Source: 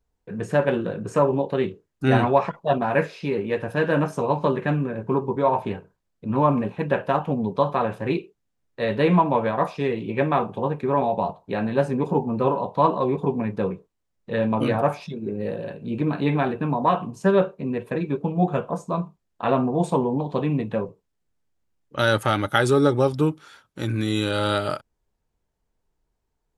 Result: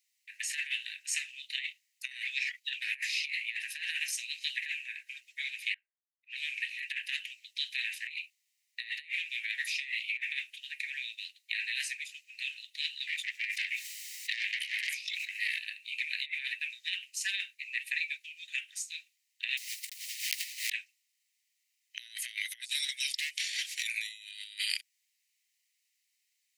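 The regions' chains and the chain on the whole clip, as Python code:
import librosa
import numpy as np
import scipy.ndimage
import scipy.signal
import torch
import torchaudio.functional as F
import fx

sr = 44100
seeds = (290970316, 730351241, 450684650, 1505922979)

y = fx.chain(x, sr, fx.env_lowpass(base_hz=370.0, full_db=-18.5),
    fx.peak_eq(hz=3600.0, db=3.5, octaves=0.72), at=(5.74, 6.7))
y = fx.chain(y, sr, fx.tube_stage(drive_db=24.0, bias=0.75),
    fx.brickwall_highpass(low_hz=660.0),
    fx.env_flatten(amount_pct=70), at=(13.07, 15.59))
y = fx.chain(y, sr, fx.peak_eq(hz=6200.0, db=-12.5, octaves=3.0),
    fx.quant_dither(seeds[0], bits=6, dither='none'),
    fx.over_compress(threshold_db=-34.0, ratio=-1.0), at=(19.57, 20.7))
y = fx.chain(y, sr, fx.lowpass(hz=9600.0, slope=12),
    fx.clip_hard(threshold_db=-26.5),
    fx.env_flatten(amount_pct=70), at=(23.14, 23.83))
y = scipy.signal.sosfilt(scipy.signal.butter(16, 1900.0, 'highpass', fs=sr, output='sos'), y)
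y = fx.notch(y, sr, hz=3400.0, q=14.0)
y = fx.over_compress(y, sr, threshold_db=-43.0, ratio=-0.5)
y = F.gain(torch.from_numpy(y), 8.5).numpy()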